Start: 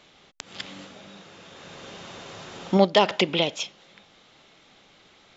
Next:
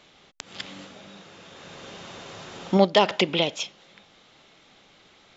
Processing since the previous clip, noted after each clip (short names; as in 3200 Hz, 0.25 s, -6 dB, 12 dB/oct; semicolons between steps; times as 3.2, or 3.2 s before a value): nothing audible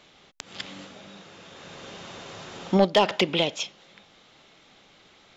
soft clip -6.5 dBFS, distortion -19 dB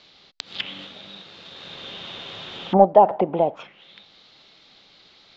in parallel at -12 dB: bit-crush 7-bit; on the sum: envelope low-pass 770–4600 Hz down, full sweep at -19.5 dBFS; gain -2 dB